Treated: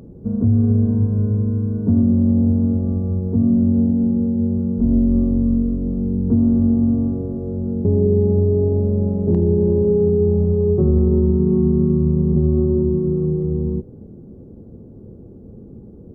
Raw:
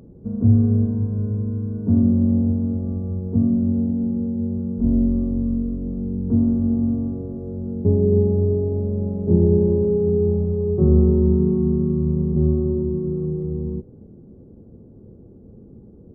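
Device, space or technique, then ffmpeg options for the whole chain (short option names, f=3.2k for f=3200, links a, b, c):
clipper into limiter: -af "asoftclip=type=hard:threshold=-5dB,alimiter=limit=-13dB:level=0:latency=1:release=93,volume=5dB"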